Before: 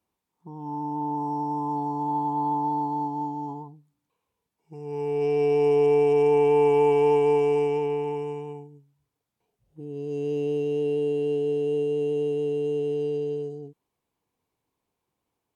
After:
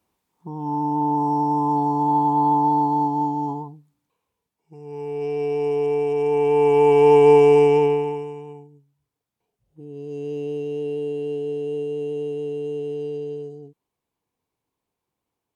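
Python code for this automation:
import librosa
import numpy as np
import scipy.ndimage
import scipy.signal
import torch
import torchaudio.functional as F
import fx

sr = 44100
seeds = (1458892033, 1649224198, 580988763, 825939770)

y = fx.gain(x, sr, db=fx.line((3.48, 7.5), (4.77, -2.0), (6.17, -2.0), (7.29, 9.0), (7.84, 9.0), (8.31, -1.5)))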